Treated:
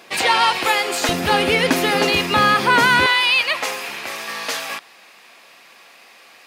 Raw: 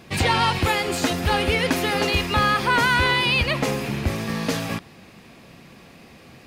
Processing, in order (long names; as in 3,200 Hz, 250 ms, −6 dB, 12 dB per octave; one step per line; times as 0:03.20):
loose part that buzzes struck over −28 dBFS, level −31 dBFS
high-pass filter 500 Hz 12 dB per octave, from 0:01.09 180 Hz, from 0:03.06 840 Hz
level +5 dB